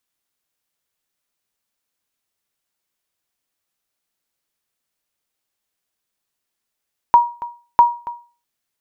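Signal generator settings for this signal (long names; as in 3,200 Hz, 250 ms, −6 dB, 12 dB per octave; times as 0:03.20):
ping with an echo 953 Hz, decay 0.36 s, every 0.65 s, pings 2, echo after 0.28 s, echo −18 dB −2.5 dBFS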